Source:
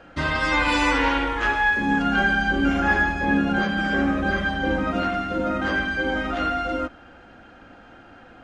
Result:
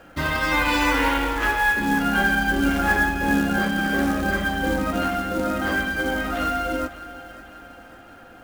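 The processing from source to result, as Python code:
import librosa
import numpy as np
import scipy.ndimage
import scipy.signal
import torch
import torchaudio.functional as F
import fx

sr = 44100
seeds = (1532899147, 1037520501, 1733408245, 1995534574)

y = fx.quant_float(x, sr, bits=2)
y = fx.echo_split(y, sr, split_hz=370.0, low_ms=323, high_ms=551, feedback_pct=52, wet_db=-15.5)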